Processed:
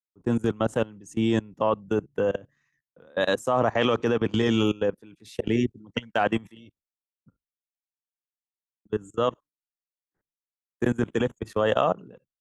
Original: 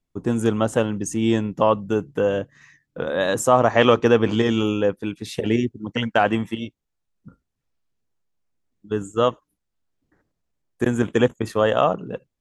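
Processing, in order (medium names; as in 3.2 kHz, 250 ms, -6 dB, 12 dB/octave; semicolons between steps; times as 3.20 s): level held to a coarse grid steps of 22 dB; gate with hold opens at -56 dBFS; three bands expanded up and down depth 40%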